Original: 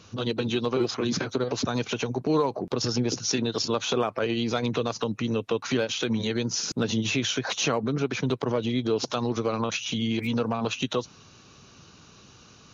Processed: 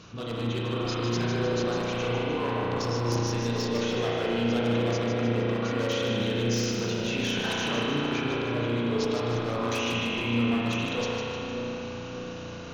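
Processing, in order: high shelf 6100 Hz -8 dB; reverse; compressor 12:1, threshold -34 dBFS, peak gain reduction 15 dB; reverse; wavefolder -31 dBFS; transient shaper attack -2 dB, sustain +5 dB; on a send: split-band echo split 1000 Hz, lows 0.589 s, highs 0.152 s, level -6 dB; on the sum: spring tank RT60 3.8 s, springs 34 ms, chirp 75 ms, DRR -5.5 dB; gain +4 dB

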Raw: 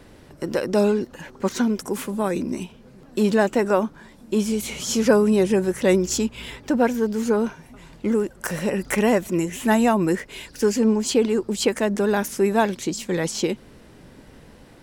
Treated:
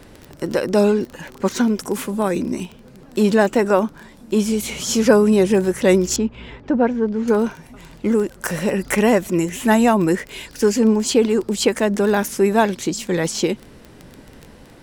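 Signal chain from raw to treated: crackle 19/s -28 dBFS; 6.16–7.28 tape spacing loss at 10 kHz 30 dB; gain +3.5 dB

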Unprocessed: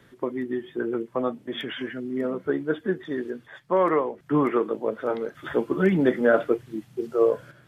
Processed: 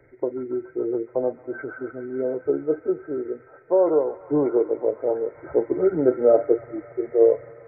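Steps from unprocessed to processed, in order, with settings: nonlinear frequency compression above 1200 Hz 4:1; fixed phaser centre 490 Hz, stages 4; thin delay 0.141 s, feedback 85%, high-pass 1700 Hz, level -7 dB; gain +4.5 dB

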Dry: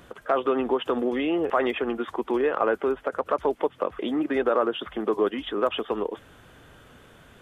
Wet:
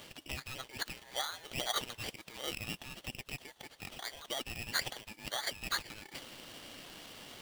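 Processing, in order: reverse; compressor 6:1, threshold -33 dBFS, peak gain reduction 15 dB; reverse; resonant high-pass 1900 Hz, resonance Q 2.5; polarity switched at an audio rate 1300 Hz; gain +2.5 dB

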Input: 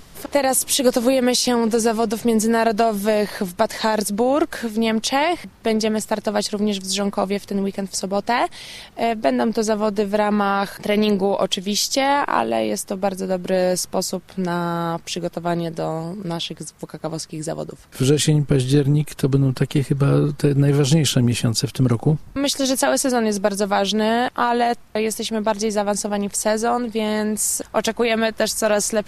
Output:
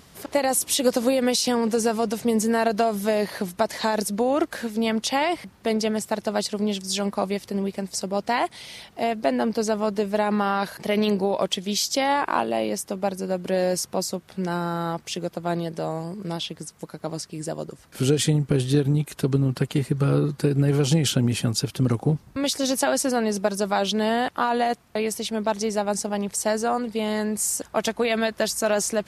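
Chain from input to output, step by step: HPF 65 Hz; gain -4 dB

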